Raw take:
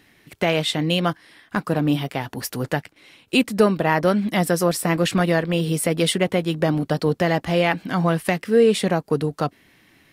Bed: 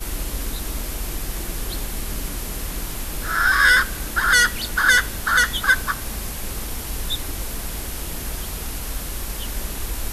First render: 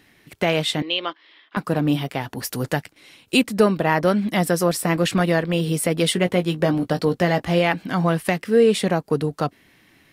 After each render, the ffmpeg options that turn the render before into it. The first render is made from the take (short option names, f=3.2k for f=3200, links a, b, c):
-filter_complex "[0:a]asettb=1/sr,asplit=3[a][b][c];[a]atrim=end=0.824[d];[b]atrim=start=0.82:end=1.57,asetpts=PTS-STARTPTS,afade=t=in:d=0.004:c=qsin,afade=t=out:st=0.746:d=0.004:c=qsin,highpass=f=370:w=0.5412,highpass=f=370:w=1.3066,equalizer=f=480:t=q:w=4:g=-7,equalizer=f=740:t=q:w=4:g=-9,equalizer=f=1.6k:t=q:w=4:g=-8,equalizer=f=3.3k:t=q:w=4:g=4,lowpass=f=4k:w=0.5412,lowpass=f=4k:w=1.3066[e];[c]atrim=start=1.566[f];[d][e]acrossfade=d=0.004:c1=hsin:c2=qsin[g];[g][f]acrossfade=d=0.004:c1=qsin:c2=hsin,asettb=1/sr,asplit=3[h][i][j];[h]atrim=end=2.474[k];[i]atrim=start=2.47:end=3.4,asetpts=PTS-STARTPTS,afade=t=in:d=0.004:c=qsin,afade=t=out:st=0.926:d=0.004:c=qsin,bass=f=250:g=1,treble=f=4k:g=5[l];[j]atrim=start=3.396[m];[k][l]acrossfade=d=0.004:c1=hsin:c2=qsin[n];[n][m]acrossfade=d=0.004:c1=qsin:c2=hsin,asettb=1/sr,asplit=3[o][p][q];[o]atrim=end=6.144[r];[p]atrim=start=6.14:end=7.59,asetpts=PTS-STARTPTS,afade=t=in:d=0.004:c=qsin,afade=t=out:st=1.446:d=0.004:c=qsin,asplit=2[s][t];[t]adelay=17,volume=-9.5dB[u];[s][u]amix=inputs=2:normalize=0,atrim=end_sample=63945[v];[q]atrim=start=7.586[w];[r][v]acrossfade=d=0.004:c1=hsin:c2=qsin[x];[x][w]acrossfade=d=0.004:c1=qsin:c2=hsin"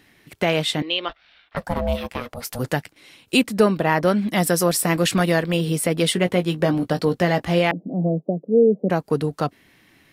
-filter_complex "[0:a]asplit=3[a][b][c];[a]afade=t=out:st=1.08:d=0.02[d];[b]aeval=exprs='val(0)*sin(2*PI*360*n/s)':c=same,afade=t=in:st=1.08:d=0.02,afade=t=out:st=2.58:d=0.02[e];[c]afade=t=in:st=2.58:d=0.02[f];[d][e][f]amix=inputs=3:normalize=0,asettb=1/sr,asplit=3[g][h][i];[g]atrim=end=4.374[j];[h]atrim=start=4.37:end=5.57,asetpts=PTS-STARTPTS,afade=t=in:d=0.004:c=qsin,afade=t=out:st=1.196:d=0.004:c=qsin,highshelf=f=4.2k:g=6.5[k];[i]atrim=start=5.566[l];[j][k]acrossfade=d=0.004:c1=hsin:c2=qsin[m];[m][l]acrossfade=d=0.004:c1=qsin:c2=hsin,asettb=1/sr,asplit=3[n][o][p];[n]atrim=end=7.714[q];[o]atrim=start=7.71:end=8.9,asetpts=PTS-STARTPTS,afade=t=in:d=0.004:c=qsin,afade=t=out:st=1.186:d=0.004:c=qsin,asuperpass=centerf=320:order=12:qfactor=0.64[r];[p]atrim=start=8.896[s];[q][r]acrossfade=d=0.004:c1=hsin:c2=qsin[t];[t][s]acrossfade=d=0.004:c1=qsin:c2=hsin"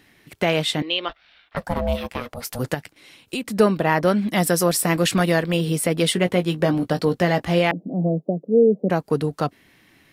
-filter_complex "[0:a]asettb=1/sr,asplit=3[a][b][c];[a]atrim=end=2.744[d];[b]atrim=start=2.74:end=3.47,asetpts=PTS-STARTPTS,afade=t=in:d=0.004:c=qsin,afade=t=out:st=0.726:d=0.004:c=qsin,acompressor=threshold=-26dB:ratio=3:attack=3.2:release=140:knee=1:detection=peak[e];[c]atrim=start=3.466[f];[d][e]acrossfade=d=0.004:c1=hsin:c2=qsin[g];[g][f]acrossfade=d=0.004:c1=qsin:c2=hsin"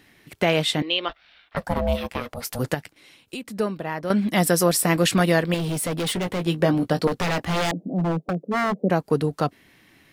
-filter_complex "[0:a]asettb=1/sr,asplit=3[a][b][c];[a]atrim=end=5.544[d];[b]atrim=start=5.54:end=6.47,asetpts=PTS-STARTPTS,afade=t=in:d=0.004:c=qsin,afade=t=out:st=0.926:d=0.004:c=qsin,volume=23dB,asoftclip=hard,volume=-23dB[e];[c]atrim=start=6.466[f];[d][e]acrossfade=d=0.004:c1=hsin:c2=qsin[g];[g][f]acrossfade=d=0.004:c1=qsin:c2=hsin,asettb=1/sr,asplit=3[h][i][j];[h]atrim=end=7.074[k];[i]atrim=start=7.07:end=8.75,asetpts=PTS-STARTPTS,afade=t=in:d=0.004:c=qsin,afade=t=out:st=1.676:d=0.004:c=qsin,aeval=exprs='0.126*(abs(mod(val(0)/0.126+3,4)-2)-1)':c=same[l];[j]atrim=start=8.746[m];[k][l]acrossfade=d=0.004:c1=hsin:c2=qsin[n];[n][m]acrossfade=d=0.004:c1=qsin:c2=hsin,asplit=2[o][p];[o]atrim=end=4.1,asetpts=PTS-STARTPTS,afade=t=out:st=2.72:d=1.38:c=qua:silence=0.298538[q];[p]atrim=start=4.1,asetpts=PTS-STARTPTS,afade=t=in:d=0.004:c=hsin:silence=0.298538[r];[q][r]concat=n=2:v=0:a=1"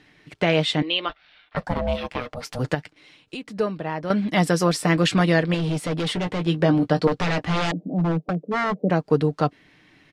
-af "lowpass=5.4k,aecho=1:1:6.6:0.33"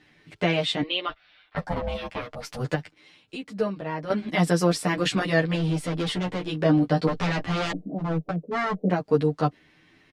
-filter_complex "[0:a]asplit=2[a][b];[b]adelay=10.1,afreqshift=0.73[c];[a][c]amix=inputs=2:normalize=1"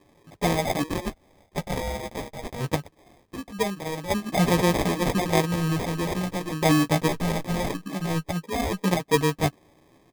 -filter_complex "[0:a]acrossover=split=850[a][b];[b]aexciter=amount=5.7:drive=5.5:freq=7.4k[c];[a][c]amix=inputs=2:normalize=0,acrusher=samples=31:mix=1:aa=0.000001"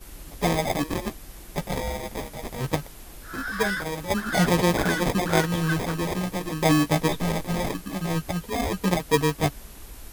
-filter_complex "[1:a]volume=-15dB[a];[0:a][a]amix=inputs=2:normalize=0"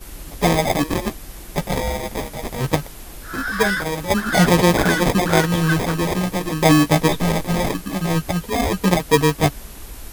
-af "volume=6.5dB,alimiter=limit=-3dB:level=0:latency=1"